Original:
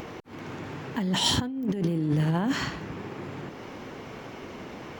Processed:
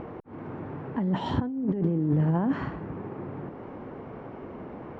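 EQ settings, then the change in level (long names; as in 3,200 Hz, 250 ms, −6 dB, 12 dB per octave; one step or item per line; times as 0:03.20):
low-pass filter 1,100 Hz 12 dB per octave
+1.0 dB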